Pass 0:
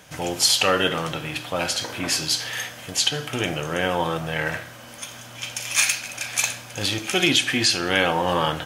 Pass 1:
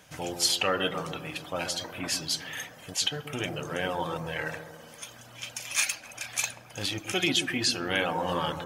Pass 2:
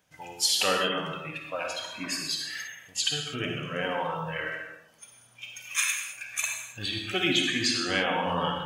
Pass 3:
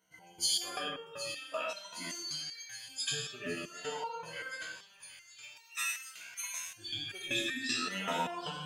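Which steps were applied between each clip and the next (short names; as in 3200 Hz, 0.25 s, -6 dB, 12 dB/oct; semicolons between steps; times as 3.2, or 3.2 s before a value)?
reverb removal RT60 0.75 s; dark delay 0.135 s, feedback 59%, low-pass 980 Hz, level -7 dB; gain -6.5 dB
spectral noise reduction 15 dB; on a send at -2 dB: reverb, pre-delay 46 ms
moving spectral ripple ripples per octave 1.9, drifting +0.48 Hz, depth 18 dB; thin delay 0.766 s, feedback 70%, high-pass 2500 Hz, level -11.5 dB; stepped resonator 5.2 Hz 64–460 Hz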